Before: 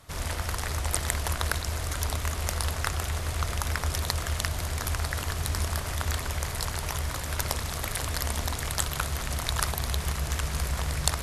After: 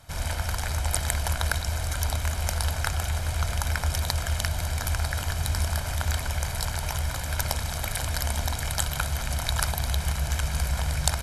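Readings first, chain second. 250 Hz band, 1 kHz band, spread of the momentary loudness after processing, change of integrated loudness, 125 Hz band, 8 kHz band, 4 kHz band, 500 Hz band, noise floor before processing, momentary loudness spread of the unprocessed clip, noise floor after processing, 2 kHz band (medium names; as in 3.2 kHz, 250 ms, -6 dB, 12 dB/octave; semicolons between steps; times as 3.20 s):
0.0 dB, +1.0 dB, 3 LU, +2.0 dB, +3.0 dB, +1.0 dB, +1.0 dB, +0.5 dB, -34 dBFS, 3 LU, -32 dBFS, +1.5 dB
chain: comb 1.3 ms, depth 50%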